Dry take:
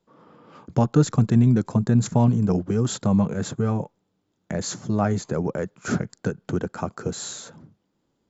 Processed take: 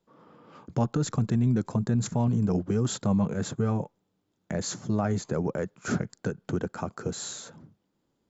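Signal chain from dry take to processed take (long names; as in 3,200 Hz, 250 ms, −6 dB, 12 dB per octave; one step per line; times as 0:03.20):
brickwall limiter −14 dBFS, peak gain reduction 8.5 dB
level −3 dB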